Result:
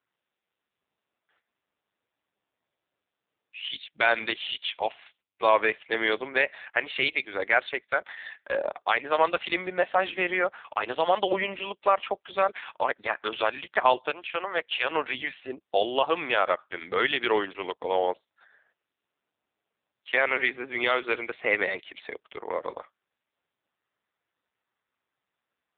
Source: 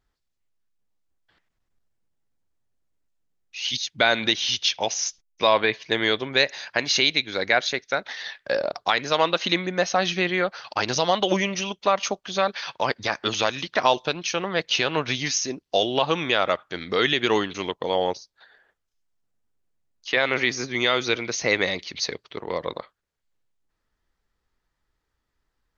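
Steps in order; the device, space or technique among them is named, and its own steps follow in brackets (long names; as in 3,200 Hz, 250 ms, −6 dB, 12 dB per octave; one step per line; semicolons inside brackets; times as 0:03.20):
0:14.10–0:14.91: high-pass filter 430 Hz 12 dB per octave
telephone (band-pass filter 380–3,000 Hz; AMR narrowband 5.9 kbit/s 8,000 Hz)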